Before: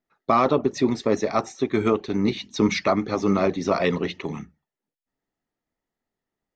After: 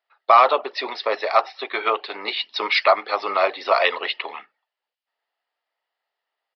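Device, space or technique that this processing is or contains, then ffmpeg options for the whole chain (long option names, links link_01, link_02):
musical greeting card: -af "aresample=11025,aresample=44100,highpass=frequency=620:width=0.5412,highpass=frequency=620:width=1.3066,equalizer=frequency=2900:width_type=o:width=0.24:gain=5.5,volume=7.5dB"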